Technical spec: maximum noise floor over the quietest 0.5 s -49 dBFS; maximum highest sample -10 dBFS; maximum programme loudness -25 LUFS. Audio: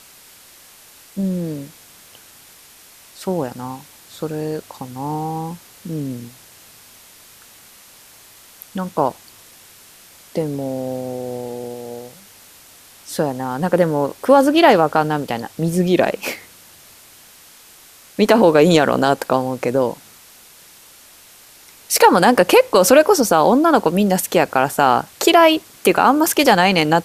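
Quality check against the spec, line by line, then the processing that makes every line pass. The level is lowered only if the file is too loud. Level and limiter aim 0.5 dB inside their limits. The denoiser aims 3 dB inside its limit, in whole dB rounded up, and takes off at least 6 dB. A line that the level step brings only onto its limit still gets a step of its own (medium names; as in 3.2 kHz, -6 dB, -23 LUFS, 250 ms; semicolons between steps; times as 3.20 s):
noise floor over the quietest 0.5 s -46 dBFS: fail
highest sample -1.5 dBFS: fail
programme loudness -16.5 LUFS: fail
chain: trim -9 dB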